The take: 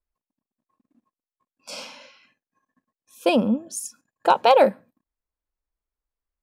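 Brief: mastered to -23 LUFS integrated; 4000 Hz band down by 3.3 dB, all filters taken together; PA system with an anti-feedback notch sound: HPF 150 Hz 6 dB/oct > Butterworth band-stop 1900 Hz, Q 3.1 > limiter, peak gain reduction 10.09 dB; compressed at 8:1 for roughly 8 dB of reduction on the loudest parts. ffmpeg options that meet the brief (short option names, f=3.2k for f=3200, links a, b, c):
-af "equalizer=f=4k:t=o:g=-4.5,acompressor=threshold=-19dB:ratio=8,highpass=f=150:p=1,asuperstop=centerf=1900:order=8:qfactor=3.1,volume=9.5dB,alimiter=limit=-10.5dB:level=0:latency=1"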